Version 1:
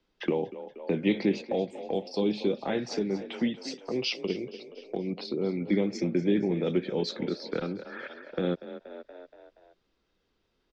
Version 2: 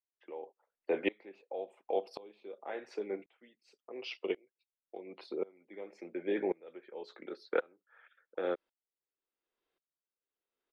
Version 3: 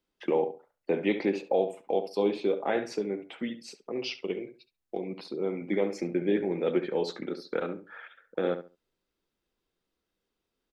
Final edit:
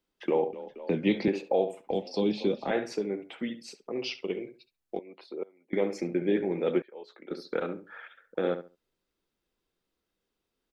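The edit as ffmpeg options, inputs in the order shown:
-filter_complex "[0:a]asplit=2[a][b];[1:a]asplit=2[c][d];[2:a]asplit=5[e][f][g][h][i];[e]atrim=end=0.532[j];[a]atrim=start=0.528:end=1.282[k];[f]atrim=start=1.278:end=1.912[l];[b]atrim=start=1.908:end=2.712[m];[g]atrim=start=2.708:end=4.992[n];[c]atrim=start=4.988:end=5.732[o];[h]atrim=start=5.728:end=6.822[p];[d]atrim=start=6.818:end=7.312[q];[i]atrim=start=7.308[r];[j][k]acrossfade=d=0.004:c1=hsin:c2=hsin[s];[s][l]acrossfade=d=0.004:c1=hsin:c2=hsin[t];[t][m]acrossfade=d=0.004:c1=hsin:c2=hsin[u];[u][n]acrossfade=d=0.004:c1=hsin:c2=hsin[v];[v][o]acrossfade=d=0.004:c1=hsin:c2=hsin[w];[w][p]acrossfade=d=0.004:c1=hsin:c2=hsin[x];[x][q]acrossfade=d=0.004:c1=hsin:c2=hsin[y];[y][r]acrossfade=d=0.004:c1=hsin:c2=hsin"

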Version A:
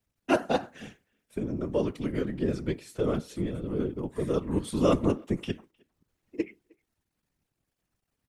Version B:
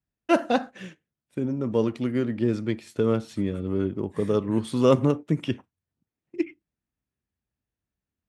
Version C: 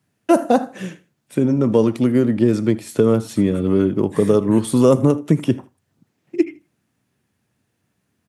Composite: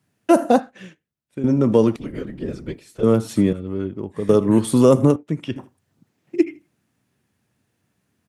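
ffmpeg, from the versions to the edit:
-filter_complex "[1:a]asplit=3[a][b][c];[2:a]asplit=5[d][e][f][g][h];[d]atrim=end=0.602[i];[a]atrim=start=0.598:end=1.442[j];[e]atrim=start=1.438:end=1.962[k];[0:a]atrim=start=1.958:end=3.032[l];[f]atrim=start=3.028:end=3.532[m];[b]atrim=start=3.528:end=4.292[n];[g]atrim=start=4.288:end=5.162[o];[c]atrim=start=5.158:end=5.562[p];[h]atrim=start=5.558[q];[i][j]acrossfade=d=0.004:c1=hsin:c2=hsin[r];[r][k]acrossfade=d=0.004:c1=hsin:c2=hsin[s];[s][l]acrossfade=d=0.004:c1=hsin:c2=hsin[t];[t][m]acrossfade=d=0.004:c1=hsin:c2=hsin[u];[u][n]acrossfade=d=0.004:c1=hsin:c2=hsin[v];[v][o]acrossfade=d=0.004:c1=hsin:c2=hsin[w];[w][p]acrossfade=d=0.004:c1=hsin:c2=hsin[x];[x][q]acrossfade=d=0.004:c1=hsin:c2=hsin"

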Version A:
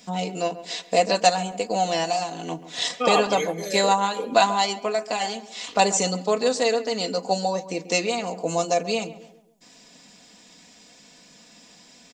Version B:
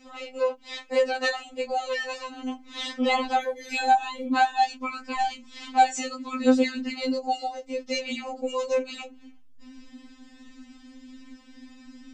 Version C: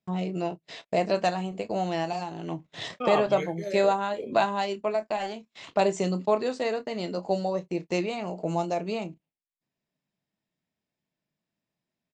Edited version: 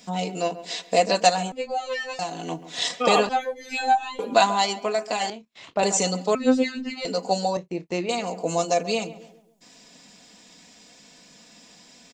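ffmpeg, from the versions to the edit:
-filter_complex "[1:a]asplit=3[a][b][c];[2:a]asplit=2[d][e];[0:a]asplit=6[f][g][h][i][j][k];[f]atrim=end=1.522[l];[a]atrim=start=1.518:end=2.192[m];[g]atrim=start=2.188:end=3.292[n];[b]atrim=start=3.288:end=4.192[o];[h]atrim=start=4.188:end=5.302[p];[d]atrim=start=5.298:end=5.832[q];[i]atrim=start=5.828:end=6.352[r];[c]atrim=start=6.348:end=7.052[s];[j]atrim=start=7.048:end=7.572[t];[e]atrim=start=7.568:end=8.092[u];[k]atrim=start=8.088[v];[l][m]acrossfade=d=0.004:c1=hsin:c2=hsin[w];[w][n]acrossfade=d=0.004:c1=hsin:c2=hsin[x];[x][o]acrossfade=d=0.004:c1=hsin:c2=hsin[y];[y][p]acrossfade=d=0.004:c1=hsin:c2=hsin[z];[z][q]acrossfade=d=0.004:c1=hsin:c2=hsin[aa];[aa][r]acrossfade=d=0.004:c1=hsin:c2=hsin[ab];[ab][s]acrossfade=d=0.004:c1=hsin:c2=hsin[ac];[ac][t]acrossfade=d=0.004:c1=hsin:c2=hsin[ad];[ad][u]acrossfade=d=0.004:c1=hsin:c2=hsin[ae];[ae][v]acrossfade=d=0.004:c1=hsin:c2=hsin"

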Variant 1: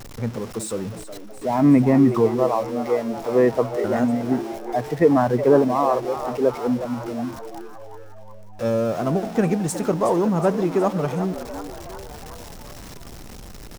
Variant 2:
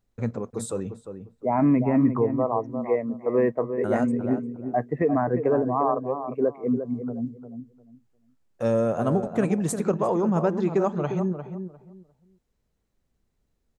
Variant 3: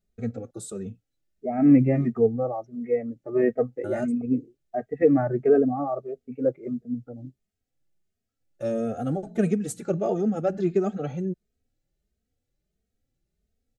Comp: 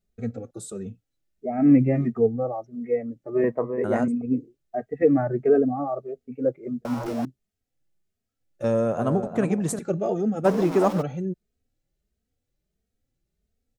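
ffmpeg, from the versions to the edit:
-filter_complex "[1:a]asplit=2[a][b];[0:a]asplit=2[c][d];[2:a]asplit=5[e][f][g][h][i];[e]atrim=end=3.442[j];[a]atrim=start=3.438:end=4.082[k];[f]atrim=start=4.078:end=6.852[l];[c]atrim=start=6.848:end=7.252[m];[g]atrim=start=7.248:end=8.642[n];[b]atrim=start=8.638:end=9.792[o];[h]atrim=start=9.788:end=10.46[p];[d]atrim=start=10.44:end=11.03[q];[i]atrim=start=11.01[r];[j][k]acrossfade=d=0.004:c1=hsin:c2=hsin[s];[s][l]acrossfade=d=0.004:c1=hsin:c2=hsin[t];[t][m]acrossfade=d=0.004:c1=hsin:c2=hsin[u];[u][n]acrossfade=d=0.004:c1=hsin:c2=hsin[v];[v][o]acrossfade=d=0.004:c1=hsin:c2=hsin[w];[w][p]acrossfade=d=0.004:c1=hsin:c2=hsin[x];[x][q]acrossfade=d=0.02:c1=tri:c2=tri[y];[y][r]acrossfade=d=0.02:c1=tri:c2=tri"

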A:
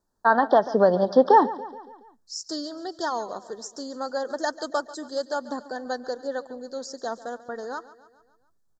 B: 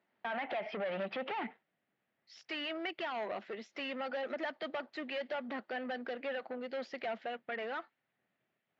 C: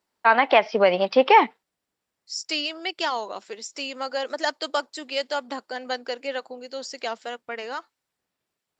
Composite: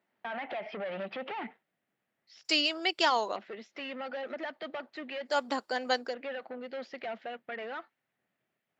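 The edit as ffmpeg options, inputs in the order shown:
-filter_complex "[2:a]asplit=2[a][b];[1:a]asplit=3[c][d][e];[c]atrim=end=2.452[f];[a]atrim=start=2.448:end=3.362[g];[d]atrim=start=3.358:end=5.39[h];[b]atrim=start=5.23:end=6.16[i];[e]atrim=start=6[j];[f][g]acrossfade=d=0.004:c1=hsin:c2=hsin[k];[k][h]acrossfade=d=0.004:c1=hsin:c2=hsin[l];[l][i]acrossfade=d=0.16:c1=tri:c2=tri[m];[m][j]acrossfade=d=0.16:c1=tri:c2=tri"

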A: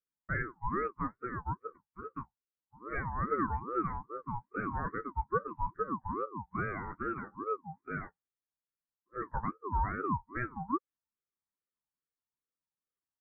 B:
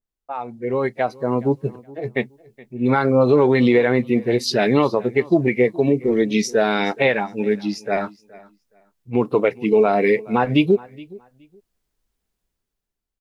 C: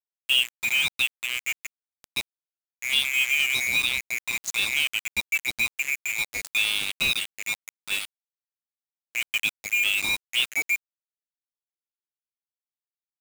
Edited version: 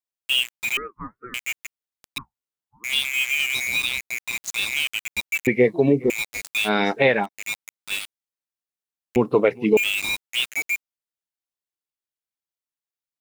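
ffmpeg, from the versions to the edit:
-filter_complex "[0:a]asplit=2[a][b];[1:a]asplit=3[c][d][e];[2:a]asplit=6[f][g][h][i][j][k];[f]atrim=end=0.772[l];[a]atrim=start=0.768:end=1.342[m];[g]atrim=start=1.338:end=2.182[n];[b]atrim=start=2.178:end=2.842[o];[h]atrim=start=2.838:end=5.472[p];[c]atrim=start=5.468:end=6.102[q];[i]atrim=start=6.098:end=6.7[r];[d]atrim=start=6.64:end=7.29[s];[j]atrim=start=7.23:end=9.162[t];[e]atrim=start=9.158:end=9.772[u];[k]atrim=start=9.768[v];[l][m]acrossfade=d=0.004:c1=hsin:c2=hsin[w];[w][n]acrossfade=d=0.004:c1=hsin:c2=hsin[x];[x][o]acrossfade=d=0.004:c1=hsin:c2=hsin[y];[y][p]acrossfade=d=0.004:c1=hsin:c2=hsin[z];[z][q]acrossfade=d=0.004:c1=hsin:c2=hsin[aa];[aa][r]acrossfade=d=0.004:c1=hsin:c2=hsin[ab];[ab][s]acrossfade=d=0.06:c1=tri:c2=tri[ac];[ac][t]acrossfade=d=0.06:c1=tri:c2=tri[ad];[ad][u]acrossfade=d=0.004:c1=hsin:c2=hsin[ae];[ae][v]acrossfade=d=0.004:c1=hsin:c2=hsin"

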